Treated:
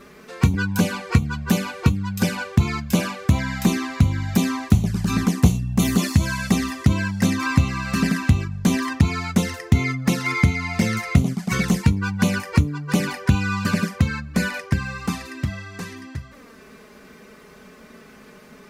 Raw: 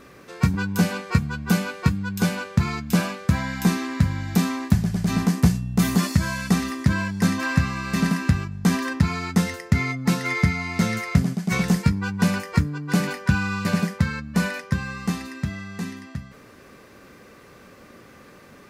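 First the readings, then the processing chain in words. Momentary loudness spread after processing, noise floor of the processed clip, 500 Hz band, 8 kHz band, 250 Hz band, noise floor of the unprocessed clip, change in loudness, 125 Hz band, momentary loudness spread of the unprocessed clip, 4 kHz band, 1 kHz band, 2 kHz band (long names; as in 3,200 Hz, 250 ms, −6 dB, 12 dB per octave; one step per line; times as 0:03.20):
6 LU, −47 dBFS, +1.5 dB, +2.5 dB, +1.0 dB, −48 dBFS, +2.0 dB, +2.0 dB, 6 LU, +2.0 dB, +1.0 dB, +1.0 dB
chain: dynamic equaliser 170 Hz, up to −6 dB, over −31 dBFS, Q 2.7
flanger swept by the level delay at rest 5.4 ms, full sweep at −18 dBFS
level +5 dB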